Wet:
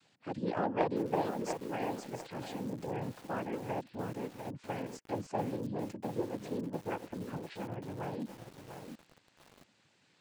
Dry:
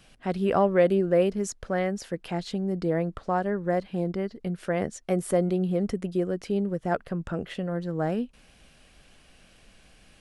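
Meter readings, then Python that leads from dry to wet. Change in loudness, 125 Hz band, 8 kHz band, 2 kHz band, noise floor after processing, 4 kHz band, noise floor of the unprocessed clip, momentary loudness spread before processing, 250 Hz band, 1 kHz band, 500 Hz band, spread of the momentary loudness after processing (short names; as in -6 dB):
-10.5 dB, -11.0 dB, -11.0 dB, -9.5 dB, -70 dBFS, -8.0 dB, -58 dBFS, 10 LU, -10.5 dB, -6.0 dB, -12.0 dB, 11 LU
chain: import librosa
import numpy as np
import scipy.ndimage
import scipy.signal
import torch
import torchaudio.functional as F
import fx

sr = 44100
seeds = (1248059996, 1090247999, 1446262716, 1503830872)

y = fx.noise_vocoder(x, sr, seeds[0], bands=8)
y = fx.cheby_harmonics(y, sr, harmonics=(3, 5), levels_db=(-14, -26), full_scale_db=-8.0)
y = fx.echo_crushed(y, sr, ms=696, feedback_pct=35, bits=7, wet_db=-6.5)
y = y * 10.0 ** (-7.0 / 20.0)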